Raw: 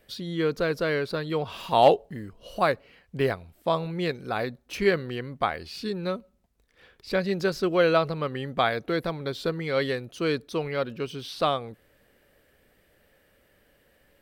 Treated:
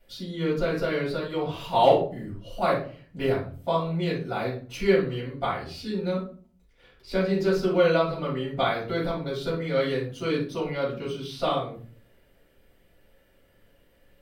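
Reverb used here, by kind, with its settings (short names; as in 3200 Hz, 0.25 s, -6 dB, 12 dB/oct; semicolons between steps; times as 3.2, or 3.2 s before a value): shoebox room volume 310 m³, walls furnished, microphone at 7 m; gain -12 dB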